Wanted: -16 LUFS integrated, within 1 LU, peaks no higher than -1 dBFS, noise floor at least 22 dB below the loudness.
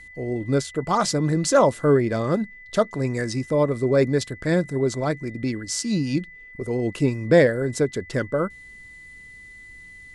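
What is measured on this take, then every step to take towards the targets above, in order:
steady tone 2000 Hz; tone level -42 dBFS; loudness -23.0 LUFS; peak -5.5 dBFS; loudness target -16.0 LUFS
-> notch 2000 Hz, Q 30; gain +7 dB; limiter -1 dBFS

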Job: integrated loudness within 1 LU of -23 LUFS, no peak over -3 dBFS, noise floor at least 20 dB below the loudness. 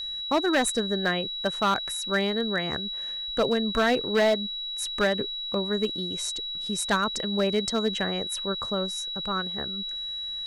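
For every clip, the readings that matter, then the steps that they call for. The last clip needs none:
clipped 0.8%; flat tops at -17.0 dBFS; steady tone 3900 Hz; tone level -31 dBFS; loudness -26.5 LUFS; peak -17.0 dBFS; loudness target -23.0 LUFS
-> clip repair -17 dBFS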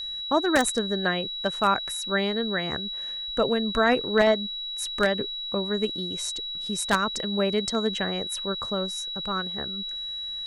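clipped 0.0%; steady tone 3900 Hz; tone level -31 dBFS
-> notch 3900 Hz, Q 30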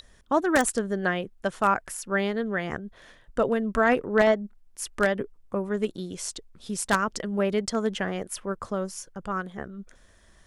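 steady tone none; loudness -27.0 LUFS; peak -7.5 dBFS; loudness target -23.0 LUFS
-> gain +4 dB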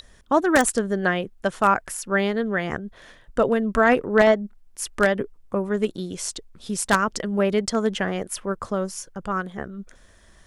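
loudness -23.5 LUFS; peak -3.5 dBFS; noise floor -53 dBFS

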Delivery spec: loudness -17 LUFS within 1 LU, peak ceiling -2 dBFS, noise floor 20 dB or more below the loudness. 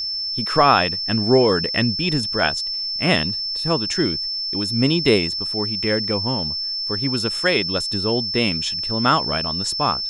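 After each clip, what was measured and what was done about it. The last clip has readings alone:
steady tone 5300 Hz; tone level -23 dBFS; loudness -19.5 LUFS; peak -2.0 dBFS; loudness target -17.0 LUFS
-> notch 5300 Hz, Q 30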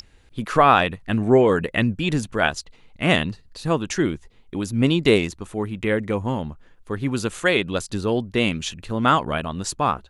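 steady tone none; loudness -22.0 LUFS; peak -2.5 dBFS; loudness target -17.0 LUFS
-> gain +5 dB; limiter -2 dBFS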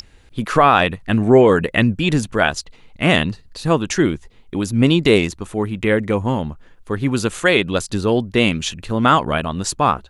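loudness -17.5 LUFS; peak -2.0 dBFS; noise floor -48 dBFS

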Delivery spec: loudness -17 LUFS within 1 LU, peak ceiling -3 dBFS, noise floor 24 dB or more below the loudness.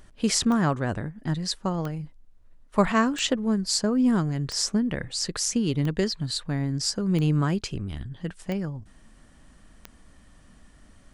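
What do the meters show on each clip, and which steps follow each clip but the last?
clicks 8; loudness -26.0 LUFS; peak -7.5 dBFS; loudness target -17.0 LUFS
-> de-click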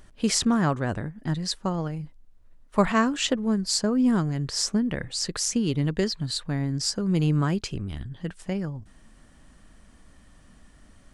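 clicks 0; loudness -26.0 LUFS; peak -7.5 dBFS; loudness target -17.0 LUFS
-> gain +9 dB; limiter -3 dBFS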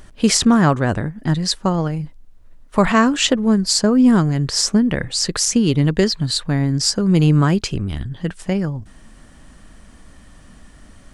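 loudness -17.5 LUFS; peak -3.0 dBFS; noise floor -45 dBFS

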